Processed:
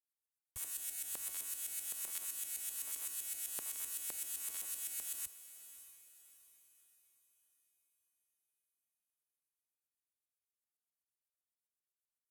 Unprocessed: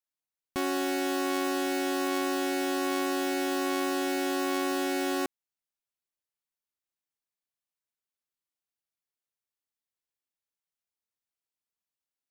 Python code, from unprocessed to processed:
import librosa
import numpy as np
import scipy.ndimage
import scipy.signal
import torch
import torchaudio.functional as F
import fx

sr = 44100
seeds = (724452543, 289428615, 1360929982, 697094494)

y = scipy.signal.sosfilt(scipy.signal.cheby2(4, 50, [200.0, 3400.0], 'bandstop', fs=sr, output='sos'), x)
y = fx.peak_eq(y, sr, hz=15000.0, db=13.5, octaves=1.2)
y = fx.leveller(y, sr, passes=1)
y = fx.filter_lfo_bandpass(y, sr, shape='saw_up', hz=7.8, low_hz=460.0, high_hz=1500.0, q=0.7)
y = fx.echo_diffused(y, sr, ms=621, feedback_pct=42, wet_db=-13.5)
y = y * 10.0 ** (11.5 / 20.0)